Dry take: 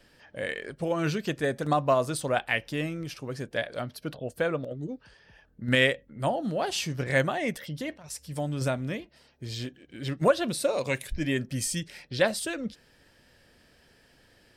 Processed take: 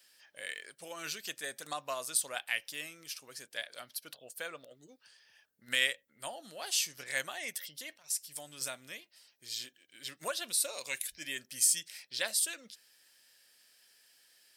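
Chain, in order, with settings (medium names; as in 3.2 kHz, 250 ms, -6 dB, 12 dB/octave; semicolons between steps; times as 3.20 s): differentiator; trim +4.5 dB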